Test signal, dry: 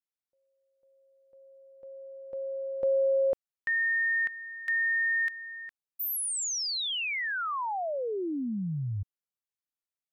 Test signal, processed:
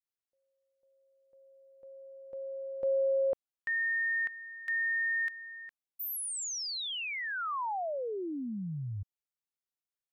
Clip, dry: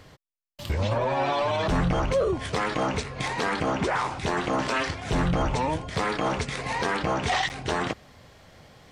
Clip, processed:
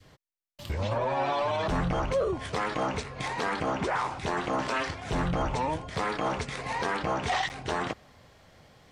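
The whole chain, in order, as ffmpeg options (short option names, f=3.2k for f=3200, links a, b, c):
-af "adynamicequalizer=threshold=0.0178:dfrequency=910:dqfactor=0.74:tfrequency=910:tqfactor=0.74:attack=5:release=100:ratio=0.375:range=1.5:mode=boostabove:tftype=bell,volume=-5dB"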